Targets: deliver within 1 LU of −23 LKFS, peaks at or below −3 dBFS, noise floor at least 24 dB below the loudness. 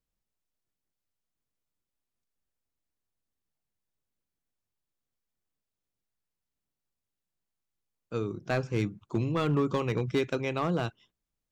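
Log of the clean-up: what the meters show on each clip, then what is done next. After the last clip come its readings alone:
share of clipped samples 0.3%; peaks flattened at −20.0 dBFS; integrated loudness −30.5 LKFS; sample peak −20.0 dBFS; target loudness −23.0 LKFS
→ clipped peaks rebuilt −20 dBFS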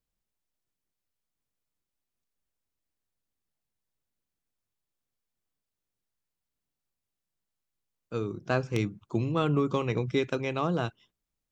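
share of clipped samples 0.0%; integrated loudness −30.0 LKFS; sample peak −11.0 dBFS; target loudness −23.0 LKFS
→ level +7 dB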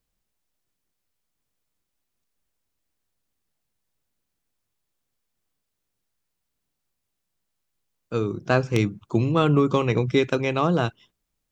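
integrated loudness −23.0 LKFS; sample peak −4.0 dBFS; background noise floor −80 dBFS

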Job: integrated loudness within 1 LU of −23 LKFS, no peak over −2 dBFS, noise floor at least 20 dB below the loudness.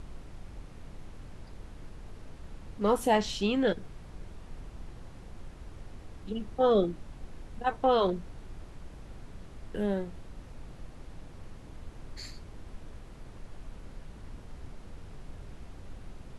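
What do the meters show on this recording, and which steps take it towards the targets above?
background noise floor −49 dBFS; target noise floor −50 dBFS; integrated loudness −29.5 LKFS; sample peak −13.5 dBFS; target loudness −23.0 LKFS
→ noise reduction from a noise print 6 dB
level +6.5 dB

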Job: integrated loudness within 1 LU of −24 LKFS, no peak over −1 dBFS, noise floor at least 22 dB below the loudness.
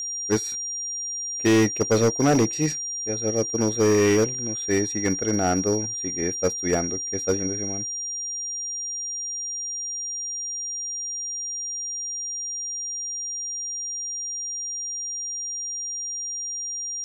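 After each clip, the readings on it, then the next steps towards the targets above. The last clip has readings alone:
share of clipped samples 1.0%; peaks flattened at −14.5 dBFS; interfering tone 5,700 Hz; level of the tone −28 dBFS; integrated loudness −25.0 LKFS; sample peak −14.5 dBFS; target loudness −24.0 LKFS
→ clipped peaks rebuilt −14.5 dBFS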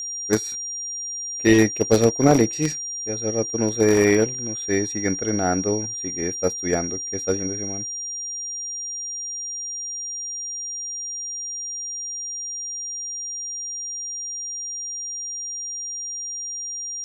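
share of clipped samples 0.0%; interfering tone 5,700 Hz; level of the tone −28 dBFS
→ notch filter 5,700 Hz, Q 30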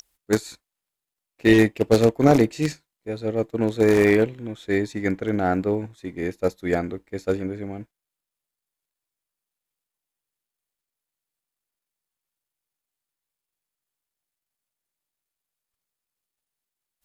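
interfering tone none found; integrated loudness −22.0 LKFS; sample peak −5.0 dBFS; target loudness −24.0 LKFS
→ level −2 dB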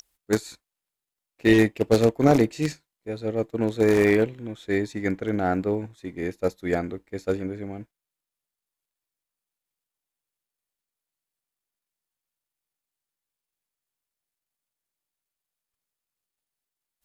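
integrated loudness −24.0 LKFS; sample peak −7.0 dBFS; background noise floor −89 dBFS

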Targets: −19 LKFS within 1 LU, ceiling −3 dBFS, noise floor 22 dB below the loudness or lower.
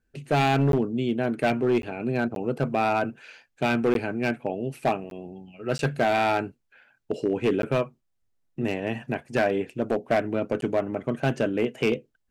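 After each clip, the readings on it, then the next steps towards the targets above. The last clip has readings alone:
share of clipped samples 1.2%; peaks flattened at −16.0 dBFS; number of dropouts 8; longest dropout 12 ms; integrated loudness −26.5 LKFS; sample peak −16.0 dBFS; target loudness −19.0 LKFS
→ clipped peaks rebuilt −16 dBFS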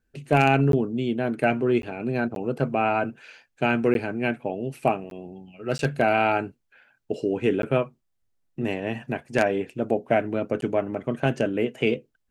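share of clipped samples 0.0%; number of dropouts 8; longest dropout 12 ms
→ repair the gap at 0:00.72/0:01.82/0:02.35/0:03.94/0:05.10/0:05.78/0:07.62/0:10.61, 12 ms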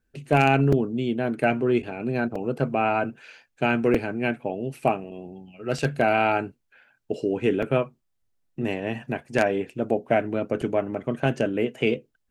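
number of dropouts 0; integrated loudness −25.0 LKFS; sample peak −7.0 dBFS; target loudness −19.0 LKFS
→ level +6 dB
brickwall limiter −3 dBFS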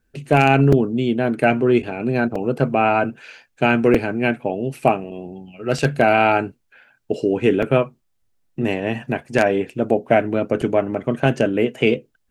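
integrated loudness −19.5 LKFS; sample peak −3.0 dBFS; background noise floor −68 dBFS

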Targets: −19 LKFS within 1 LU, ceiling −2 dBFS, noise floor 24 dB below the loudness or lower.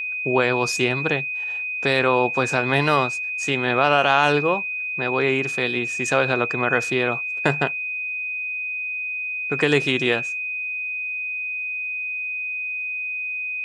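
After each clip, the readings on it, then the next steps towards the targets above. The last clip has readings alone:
crackle rate 40 per second; interfering tone 2,500 Hz; level of the tone −25 dBFS; integrated loudness −21.5 LKFS; sample peak −1.5 dBFS; target loudness −19.0 LKFS
→ click removal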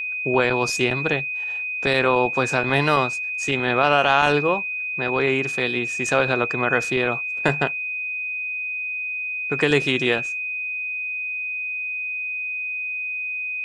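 crackle rate 0.073 per second; interfering tone 2,500 Hz; level of the tone −25 dBFS
→ notch filter 2,500 Hz, Q 30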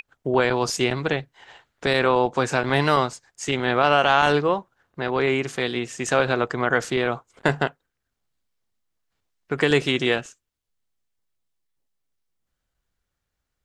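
interfering tone none found; integrated loudness −22.5 LKFS; sample peak −2.5 dBFS; target loudness −19.0 LKFS
→ level +3.5 dB
brickwall limiter −2 dBFS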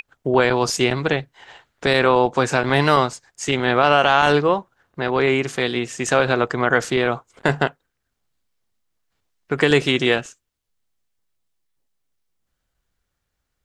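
integrated loudness −19.0 LKFS; sample peak −2.0 dBFS; background noise floor −77 dBFS

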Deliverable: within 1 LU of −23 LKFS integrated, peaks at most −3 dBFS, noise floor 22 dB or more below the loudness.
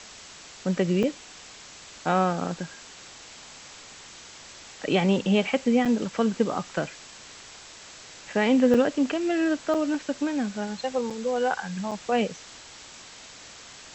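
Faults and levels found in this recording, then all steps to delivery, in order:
number of dropouts 6; longest dropout 5.7 ms; background noise floor −46 dBFS; target noise floor −48 dBFS; integrated loudness −25.5 LKFS; sample peak −9.5 dBFS; target loudness −23.0 LKFS
→ repair the gap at 0:01.03/0:05.85/0:08.74/0:09.74/0:11.10/0:11.91, 5.7 ms
broadband denoise 6 dB, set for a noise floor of −46 dBFS
level +2.5 dB

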